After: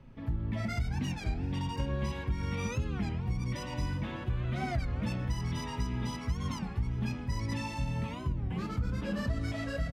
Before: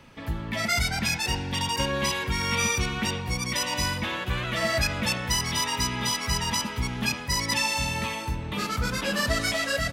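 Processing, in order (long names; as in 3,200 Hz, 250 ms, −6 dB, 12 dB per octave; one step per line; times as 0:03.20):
on a send at −5.5 dB: formant resonators in series i + convolution reverb RT60 0.70 s, pre-delay 3 ms
on the sum: flanger 0.25 Hz, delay 7.4 ms, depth 5.3 ms, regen −69%
spectral tilt −3.5 dB per octave
single-tap delay 377 ms −21.5 dB
downward compressor, threshold −21 dBFS, peak gain reduction 8 dB
wow of a warped record 33 1/3 rpm, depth 250 cents
level −6.5 dB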